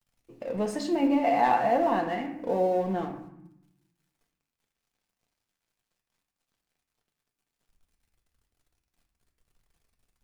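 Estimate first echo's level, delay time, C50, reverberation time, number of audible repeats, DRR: no echo audible, no echo audible, 8.0 dB, 0.75 s, no echo audible, 2.0 dB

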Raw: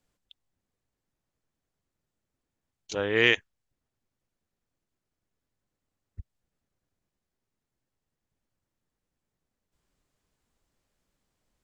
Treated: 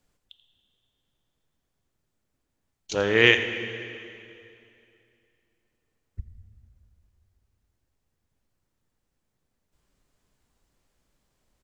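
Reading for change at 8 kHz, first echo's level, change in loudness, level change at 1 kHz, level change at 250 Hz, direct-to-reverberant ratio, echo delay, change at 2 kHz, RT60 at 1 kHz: can't be measured, −14.5 dB, +3.0 dB, +5.0 dB, +4.5 dB, 7.5 dB, 85 ms, +4.5 dB, 2.7 s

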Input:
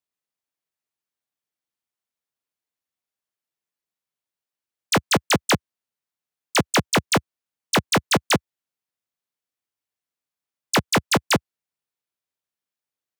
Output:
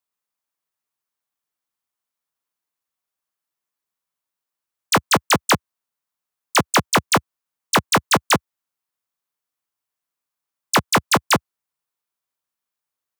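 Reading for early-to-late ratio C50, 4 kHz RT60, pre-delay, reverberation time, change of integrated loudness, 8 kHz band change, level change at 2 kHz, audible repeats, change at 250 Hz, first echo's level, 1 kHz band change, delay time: no reverb audible, no reverb audible, no reverb audible, no reverb audible, +2.5 dB, +3.0 dB, +2.5 dB, no echo audible, 0.0 dB, no echo audible, +5.5 dB, no echo audible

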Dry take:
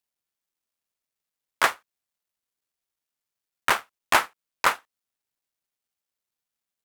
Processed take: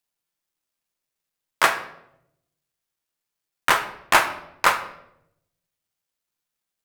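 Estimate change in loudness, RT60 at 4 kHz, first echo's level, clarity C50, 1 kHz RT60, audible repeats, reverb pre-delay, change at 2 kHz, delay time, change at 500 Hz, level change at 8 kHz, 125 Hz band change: +3.0 dB, 0.55 s, no echo audible, 10.0 dB, 0.70 s, no echo audible, 6 ms, +3.5 dB, no echo audible, +4.0 dB, +3.0 dB, +5.0 dB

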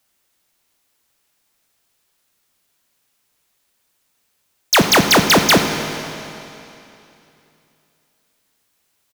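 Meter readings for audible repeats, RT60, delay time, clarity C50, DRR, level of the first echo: 1, 2.9 s, 92 ms, 7.0 dB, 6.0 dB, −17.5 dB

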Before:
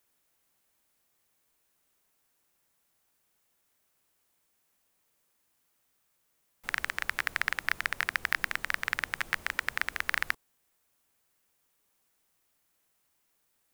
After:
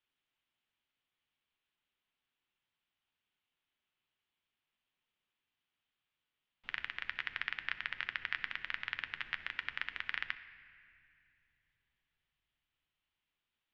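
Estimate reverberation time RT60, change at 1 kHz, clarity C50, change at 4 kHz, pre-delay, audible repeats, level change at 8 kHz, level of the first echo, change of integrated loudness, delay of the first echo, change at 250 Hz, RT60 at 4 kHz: 2.3 s, −11.0 dB, 12.5 dB, −5.0 dB, 8 ms, no echo audible, below −25 dB, no echo audible, −8.0 dB, no echo audible, −12.0 dB, 1.8 s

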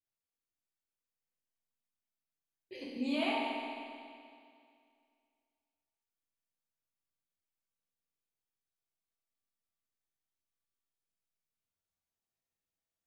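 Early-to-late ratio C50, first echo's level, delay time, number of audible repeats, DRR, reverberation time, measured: −2.5 dB, no echo audible, no echo audible, no echo audible, −6.5 dB, 2.3 s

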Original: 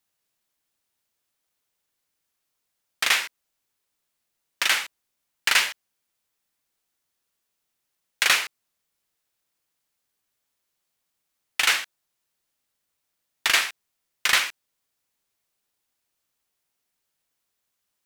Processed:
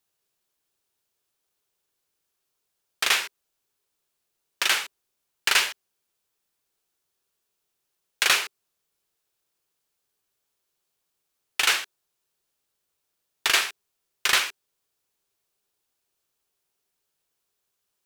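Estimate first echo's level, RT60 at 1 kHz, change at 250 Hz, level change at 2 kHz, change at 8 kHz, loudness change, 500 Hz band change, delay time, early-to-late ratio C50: no echo audible, no reverb audible, +1.0 dB, −1.5 dB, 0.0 dB, −1.0 dB, +1.5 dB, no echo audible, no reverb audible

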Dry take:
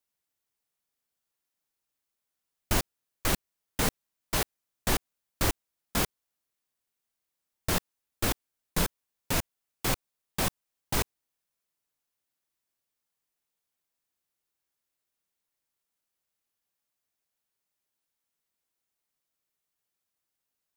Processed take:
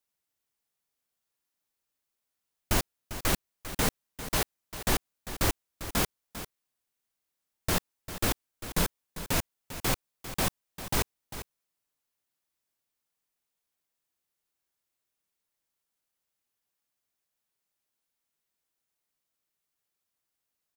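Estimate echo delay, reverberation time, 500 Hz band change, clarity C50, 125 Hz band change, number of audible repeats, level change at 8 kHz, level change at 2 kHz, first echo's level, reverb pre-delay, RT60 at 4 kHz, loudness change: 398 ms, no reverb audible, 0.0 dB, no reverb audible, 0.0 dB, 1, 0.0 dB, 0.0 dB, −12.5 dB, no reverb audible, no reverb audible, 0.0 dB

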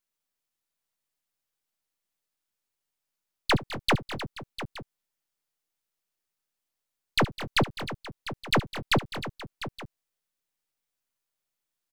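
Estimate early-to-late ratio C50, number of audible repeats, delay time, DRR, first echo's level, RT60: no reverb audible, 4, 70 ms, no reverb audible, −18.5 dB, no reverb audible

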